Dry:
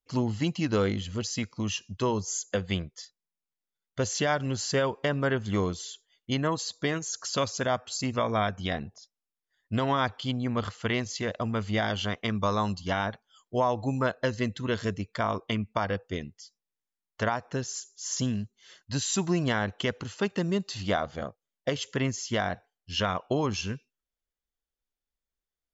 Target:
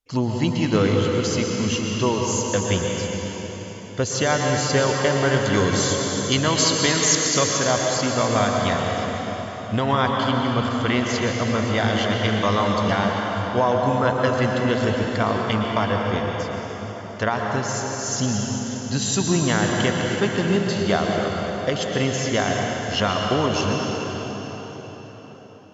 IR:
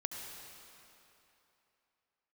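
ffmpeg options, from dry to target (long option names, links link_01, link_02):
-filter_complex "[0:a]asettb=1/sr,asplit=3[link_01][link_02][link_03];[link_01]atrim=end=5.344[link_04];[link_02]atrim=start=5.34:end=7.2,asetpts=PTS-STARTPTS,afade=type=in:duration=0.004:curve=qsin,afade=type=out:start_time=1.856:duration=0.004:curve=qsin,equalizer=frequency=6800:width_type=o:width=2.5:gain=10.5[link_05];[link_03]atrim=start=7.196[link_06];[link_04][link_05]acrossfade=duration=0.004:curve1=hsin:curve2=qsin[link_07];[link_07][link_06]acrossfade=duration=0.004:curve1=qsin:curve2=hsin[link_08];[1:a]atrim=start_sample=2205,asetrate=26460,aresample=44100[link_09];[link_08][link_09]afir=irnorm=-1:irlink=0,volume=4.5dB"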